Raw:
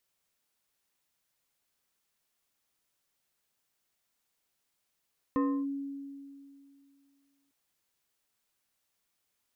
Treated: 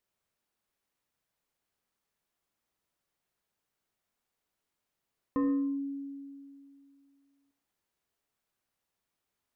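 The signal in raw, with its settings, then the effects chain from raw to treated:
FM tone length 2.15 s, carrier 278 Hz, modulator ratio 2.77, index 0.81, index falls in 0.30 s linear, decay 2.48 s, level -23.5 dB
high shelf 2100 Hz -9 dB; non-linear reverb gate 0.16 s flat, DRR 7 dB

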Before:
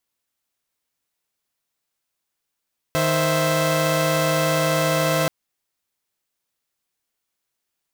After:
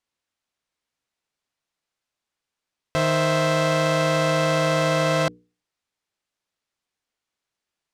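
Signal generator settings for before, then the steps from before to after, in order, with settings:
chord D#3/C5/E5 saw, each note -20 dBFS 2.33 s
air absorption 65 m; notches 60/120/180/240/300/360/420/480 Hz

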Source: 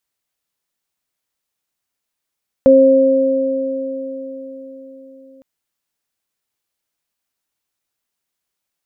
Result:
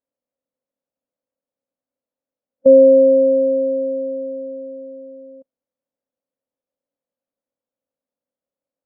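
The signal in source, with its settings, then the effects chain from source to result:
additive tone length 2.76 s, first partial 267 Hz, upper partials 6 dB, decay 4.89 s, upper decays 4.23 s, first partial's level -11 dB
per-bin compression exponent 0.6; low shelf 160 Hz -7.5 dB; spectral expander 1.5:1

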